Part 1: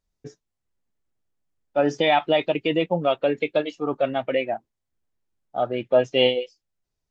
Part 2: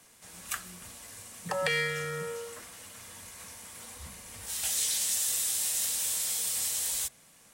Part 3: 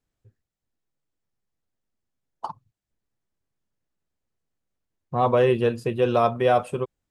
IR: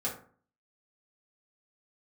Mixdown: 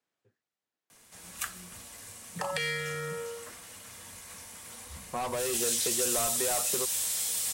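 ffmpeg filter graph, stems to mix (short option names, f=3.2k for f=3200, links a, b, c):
-filter_complex "[1:a]adelay=900,volume=0dB[a];[2:a]highpass=140,asplit=2[b][c];[c]highpass=f=720:p=1,volume=21dB,asoftclip=type=tanh:threshold=-7.5dB[d];[b][d]amix=inputs=2:normalize=0,lowpass=f=3.9k:p=1,volume=-6dB,volume=-12.5dB[e];[a][e]amix=inputs=2:normalize=0,acrossover=split=150|3000[f][g][h];[g]acompressor=threshold=-31dB:ratio=6[i];[f][i][h]amix=inputs=3:normalize=0"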